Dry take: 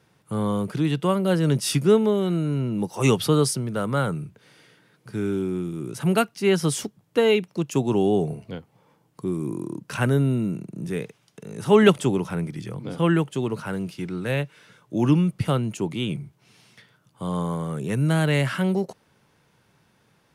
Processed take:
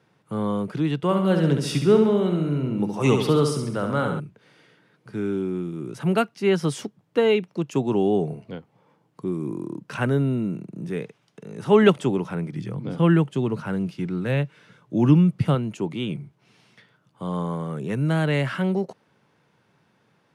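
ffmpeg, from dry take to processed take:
-filter_complex "[0:a]asettb=1/sr,asplit=3[a][b][c];[a]atrim=end=0.964[d];[b]atrim=start=0.96:end=4.2,asetpts=PTS-STARTPTS,afade=t=in:d=0.004:c=qsin,afade=t=out:st=3.236:d=0.004:c=qsin,aecho=1:1:68|136|204|272|340|408|476:0.501|0.266|0.141|0.0746|0.0395|0.021|0.0111,atrim=end_sample=142884[e];[c]atrim=start=4.196[f];[d][e]acrossfade=d=0.004:c1=hsin:c2=qsin[g];[g][f]acrossfade=d=0.004:c1=qsin:c2=hsin,asettb=1/sr,asplit=3[h][i][j];[h]atrim=end=12.534[k];[i]atrim=start=12.53:end=15.55,asetpts=PTS-STARTPTS,afade=t=in:d=0.004:c=qsin,afade=t=out:st=3.016:d=0.004:c=qsin,bass=f=250:g=6,treble=f=4k:g=1[l];[j]atrim=start=15.546[m];[k][l]acrossfade=d=0.004:c1=hsin:c2=qsin[n];[n][m]acrossfade=d=0.004:c1=qsin:c2=hsin,highpass=120,aemphasis=mode=reproduction:type=50kf"

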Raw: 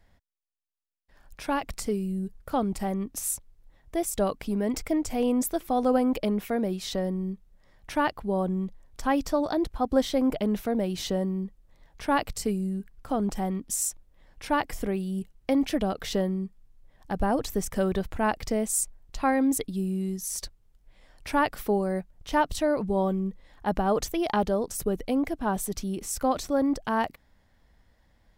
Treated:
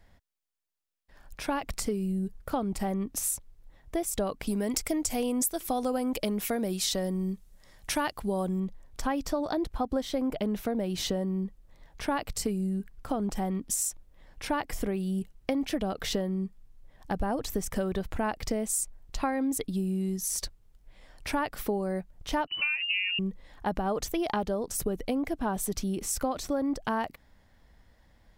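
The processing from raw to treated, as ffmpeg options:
-filter_complex "[0:a]asettb=1/sr,asplit=3[a][b][c];[a]atrim=end=4.474[d];[b]atrim=start=4.47:end=8.6,asetpts=PTS-STARTPTS,afade=t=in:d=0.004:c=qsin,afade=t=out:st=4.126:d=0.004:c=qsin,equalizer=f=9.8k:w=0.35:g=12.5[e];[c]atrim=start=8.596[f];[d][e]acrossfade=d=0.004:c1=hsin:c2=qsin[g];[g][f]acrossfade=d=0.004:c1=qsin:c2=hsin,asettb=1/sr,asplit=3[h][i][j];[h]atrim=end=22.474[k];[i]atrim=start=22.47:end=23.19,asetpts=PTS-STARTPTS,afade=t=in:d=0.004:c=qsin,afade=t=out:st=0.716:d=0.004:c=qsin,lowpass=f=2.6k:t=q:w=0.5098,lowpass=f=2.6k:t=q:w=0.6013,lowpass=f=2.6k:t=q:w=0.9,lowpass=f=2.6k:t=q:w=2.563,afreqshift=-3000[l];[j]atrim=start=23.186[m];[k][l]acrossfade=d=0.004:c1=hsin:c2=qsin[n];[n][m]acrossfade=d=0.004:c1=qsin:c2=hsin,acompressor=threshold=-29dB:ratio=5,volume=2.5dB"

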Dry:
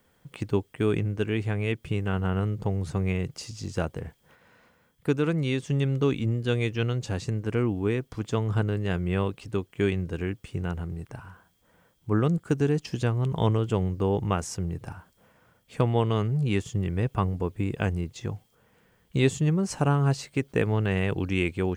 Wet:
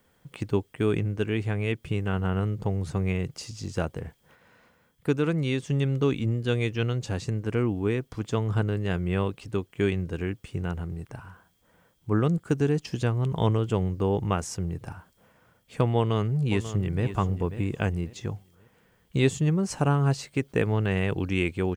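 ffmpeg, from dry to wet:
-filter_complex "[0:a]asplit=2[a][b];[b]afade=t=in:st=15.97:d=0.01,afade=t=out:st=17.05:d=0.01,aecho=0:1:540|1080|1620:0.266073|0.0798218|0.0239465[c];[a][c]amix=inputs=2:normalize=0"

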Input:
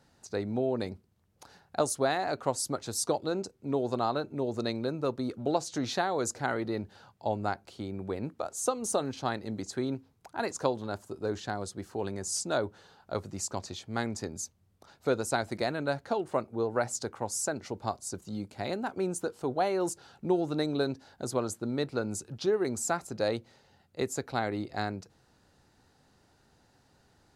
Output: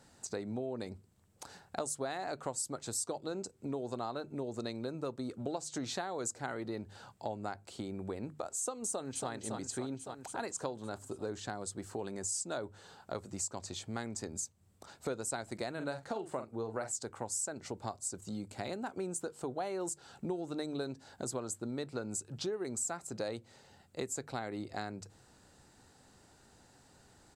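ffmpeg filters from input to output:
-filter_complex "[0:a]asplit=2[a][b];[b]afade=t=in:st=8.87:d=0.01,afade=t=out:st=9.3:d=0.01,aecho=0:1:280|560|840|1120|1400|1680|1960|2240|2520:0.446684|0.290344|0.188724|0.12267|0.0797358|0.0518283|0.0336884|0.0218974|0.0142333[c];[a][c]amix=inputs=2:normalize=0,asettb=1/sr,asplit=3[d][e][f];[d]atrim=end=15.734[g];[e]atrim=start=15.73:end=16.91,asetpts=PTS-STARTPTS,afade=t=in:d=0.004:c=qsin,afade=t=out:st=1.176:d=0.004:c=qsin,asplit=2[h][i];[i]adelay=45,volume=-9dB[j];[h][j]amix=inputs=2:normalize=0,atrim=end_sample=52038[k];[f]atrim=start=16.906[l];[g][k]acrossfade=d=0.004:c1=hsin:c2=qsin[m];[m][l]acrossfade=d=0.004:c1=qsin:c2=hsin,equalizer=f=7.9k:t=o:w=0.36:g=11,bandreject=f=50:t=h:w=6,bandreject=f=100:t=h:w=6,bandreject=f=150:t=h:w=6,acompressor=threshold=-41dB:ratio=3,volume=2.5dB"

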